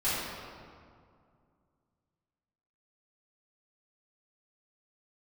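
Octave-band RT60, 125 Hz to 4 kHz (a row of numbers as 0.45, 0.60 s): 2.9, 2.7, 2.2, 2.1, 1.6, 1.3 s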